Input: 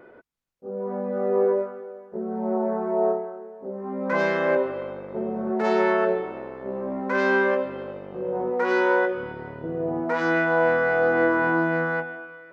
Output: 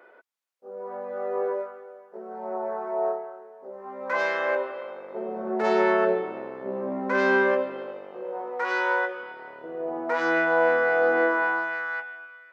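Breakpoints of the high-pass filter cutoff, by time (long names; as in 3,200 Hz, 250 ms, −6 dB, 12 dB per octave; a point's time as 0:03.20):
0:04.83 630 Hz
0:06.07 170 Hz
0:07.35 170 Hz
0:08.42 730 Hz
0:09.33 730 Hz
0:10.38 330 Hz
0:11.14 330 Hz
0:11.79 1,300 Hz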